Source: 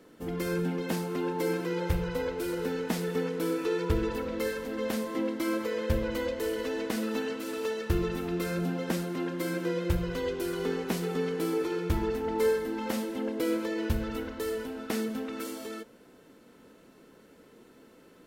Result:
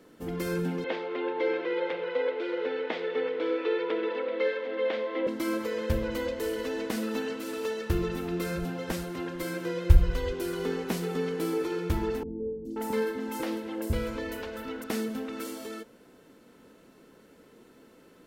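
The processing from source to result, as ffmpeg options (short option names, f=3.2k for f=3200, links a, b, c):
-filter_complex "[0:a]asettb=1/sr,asplit=3[a][b][c];[a]atrim=end=0.844[d];[b]atrim=start=0.84:end=5.27,asetpts=PTS-STARTPTS,afade=t=in:d=0.004:c=qsin,afade=t=out:st=4.426:d=0.004:c=qsin,highpass=f=320:w=0.5412,highpass=f=320:w=1.3066,equalizer=f=540:t=q:w=4:g=7,equalizer=f=2.1k:t=q:w=4:g=6,equalizer=f=3.4k:t=q:w=4:g=5,lowpass=f=3.6k:w=0.5412,lowpass=f=3.6k:w=1.3066[e];[c]atrim=start=5.266[f];[d][e]acrossfade=d=0.004:c1=hsin:c2=qsin[g];[g][f]acrossfade=d=0.004:c1=qsin:c2=hsin,asplit=3[h][i][j];[h]afade=t=out:st=8.55:d=0.02[k];[i]asubboost=boost=9.5:cutoff=64,afade=t=in:st=8.55:d=0.02,afade=t=out:st=10.31:d=0.02[l];[j]afade=t=in:st=10.31:d=0.02[m];[k][l][m]amix=inputs=3:normalize=0,asettb=1/sr,asplit=3[n][o][p];[n]atrim=end=12.234[q];[o]atrim=start=12.23:end=14.84,asetpts=PTS-STARTPTS,afade=t=in:d=0.004:c=qsin,afade=t=out:st=2.606:d=0.004:c=qsin,acrossover=split=380|5400[r][s][t];[t]adelay=420[u];[s]adelay=530[v];[r][v][u]amix=inputs=3:normalize=0,atrim=end_sample=115101[w];[p]atrim=start=14.836[x];[q][w]acrossfade=d=0.004:c1=hsin:c2=qsin[y];[y][x]acrossfade=d=0.004:c1=qsin:c2=hsin"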